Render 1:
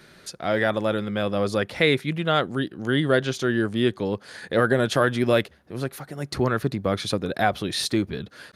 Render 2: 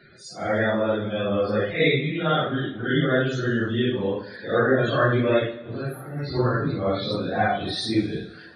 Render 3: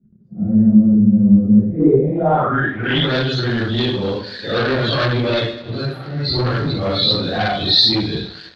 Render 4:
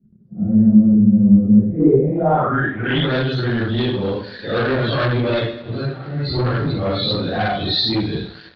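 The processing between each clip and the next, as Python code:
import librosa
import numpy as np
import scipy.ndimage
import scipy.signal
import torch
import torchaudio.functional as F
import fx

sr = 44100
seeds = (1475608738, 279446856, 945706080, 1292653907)

y1 = fx.phase_scramble(x, sr, seeds[0], window_ms=200)
y1 = fx.spec_topn(y1, sr, count=64)
y1 = fx.rev_double_slope(y1, sr, seeds[1], early_s=0.9, late_s=2.9, knee_db=-18, drr_db=10.0)
y2 = fx.low_shelf(y1, sr, hz=110.0, db=10.0)
y2 = fx.leveller(y2, sr, passes=3)
y2 = fx.filter_sweep_lowpass(y2, sr, from_hz=210.0, to_hz=4200.0, start_s=1.64, end_s=3.13, q=6.4)
y2 = F.gain(torch.from_numpy(y2), -6.5).numpy()
y3 = fx.air_absorb(y2, sr, metres=220.0)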